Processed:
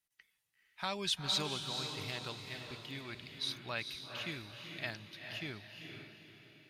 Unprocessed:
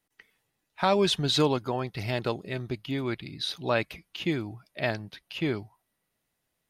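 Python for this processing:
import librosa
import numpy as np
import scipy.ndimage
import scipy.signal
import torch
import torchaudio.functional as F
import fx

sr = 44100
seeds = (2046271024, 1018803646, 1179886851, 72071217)

y = fx.tone_stack(x, sr, knobs='5-5-5')
y = fx.echo_diffused(y, sr, ms=462, feedback_pct=42, wet_db=-5.5)
y = y * 10.0 ** (1.0 / 20.0)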